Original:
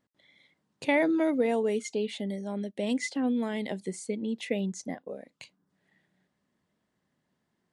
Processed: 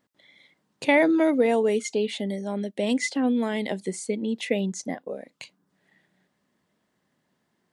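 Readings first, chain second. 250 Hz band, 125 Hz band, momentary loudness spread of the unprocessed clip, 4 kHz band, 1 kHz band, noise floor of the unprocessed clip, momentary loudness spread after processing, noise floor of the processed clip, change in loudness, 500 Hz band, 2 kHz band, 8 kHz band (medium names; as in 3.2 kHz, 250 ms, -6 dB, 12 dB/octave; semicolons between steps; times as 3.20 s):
+4.5 dB, +3.5 dB, 11 LU, +6.0 dB, +6.0 dB, -79 dBFS, 13 LU, -74 dBFS, +5.0 dB, +5.5 dB, +6.0 dB, +6.0 dB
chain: bass shelf 120 Hz -8.5 dB; trim +6 dB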